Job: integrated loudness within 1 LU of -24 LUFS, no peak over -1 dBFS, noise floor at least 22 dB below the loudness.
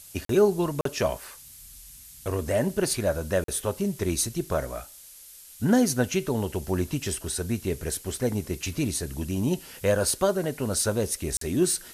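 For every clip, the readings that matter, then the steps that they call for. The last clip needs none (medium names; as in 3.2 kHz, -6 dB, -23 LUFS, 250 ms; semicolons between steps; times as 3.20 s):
dropouts 4; longest dropout 43 ms; noise floor -48 dBFS; noise floor target -49 dBFS; loudness -27.0 LUFS; peak level -8.5 dBFS; loudness target -24.0 LUFS
-> interpolate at 0.25/0.81/3.44/11.37 s, 43 ms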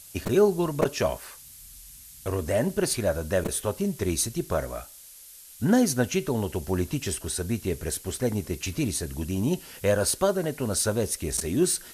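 dropouts 0; noise floor -48 dBFS; noise floor target -49 dBFS
-> noise reduction 6 dB, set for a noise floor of -48 dBFS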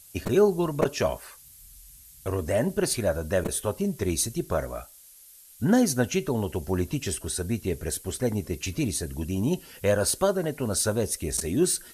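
noise floor -51 dBFS; loudness -27.0 LUFS; peak level -8.5 dBFS; loudness target -24.0 LUFS
-> trim +3 dB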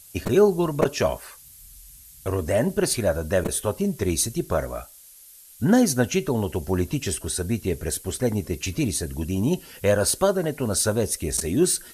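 loudness -24.0 LUFS; peak level -5.5 dBFS; noise floor -48 dBFS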